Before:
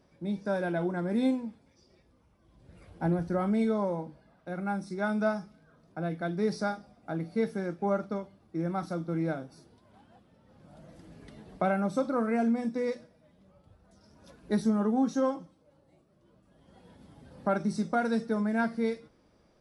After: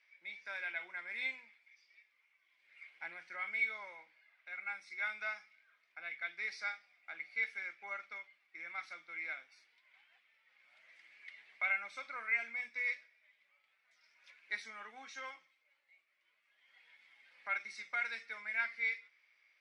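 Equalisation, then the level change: ladder band-pass 2.3 kHz, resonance 80%; +11.0 dB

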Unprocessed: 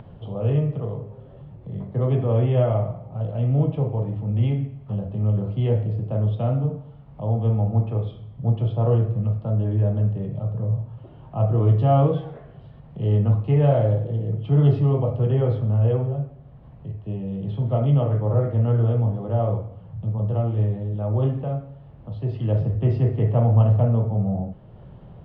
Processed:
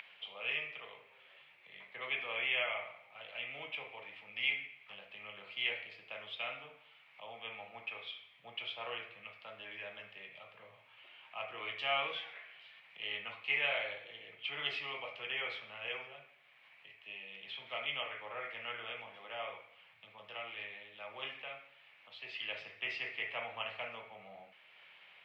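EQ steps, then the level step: resonant high-pass 2.3 kHz, resonance Q 5.8; +3.5 dB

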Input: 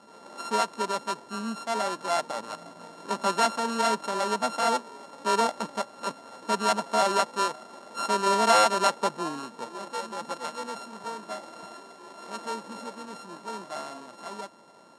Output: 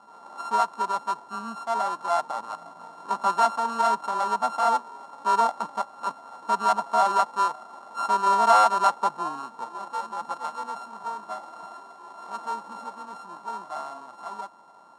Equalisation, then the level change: high-order bell 990 Hz +11.5 dB 1.2 oct; -6.5 dB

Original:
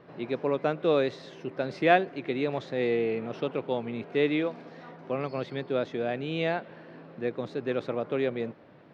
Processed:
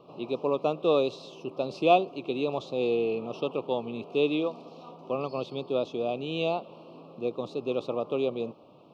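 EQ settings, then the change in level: Chebyshev band-stop 1.2–2.6 kHz, order 3; bass shelf 270 Hz -8 dB; +3.0 dB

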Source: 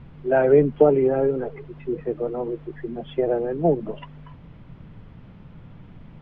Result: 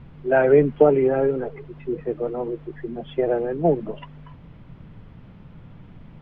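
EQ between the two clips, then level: dynamic bell 2 kHz, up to +5 dB, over -35 dBFS, Q 0.76; 0.0 dB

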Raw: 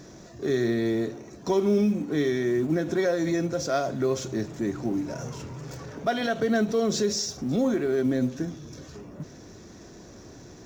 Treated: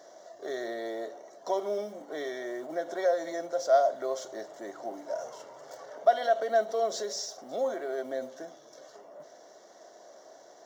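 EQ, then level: resonant high-pass 630 Hz, resonance Q 4.9; Butterworth band-stop 2.5 kHz, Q 4.7; -7.0 dB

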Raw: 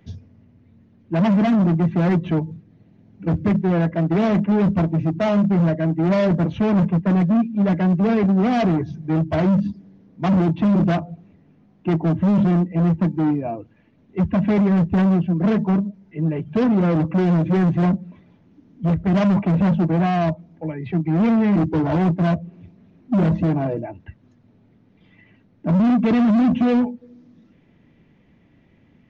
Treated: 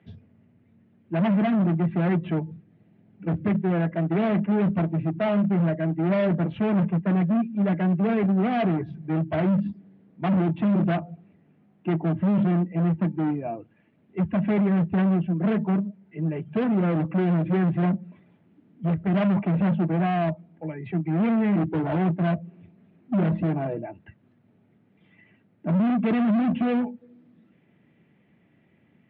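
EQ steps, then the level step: cabinet simulation 140–3200 Hz, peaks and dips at 270 Hz -5 dB, 500 Hz -3 dB, 1 kHz -4 dB; -3.0 dB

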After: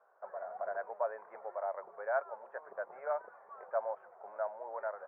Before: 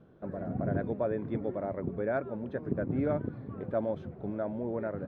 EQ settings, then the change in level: Gaussian low-pass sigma 6.6 samples; inverse Chebyshev high-pass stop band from 300 Hz, stop band 50 dB; +9.0 dB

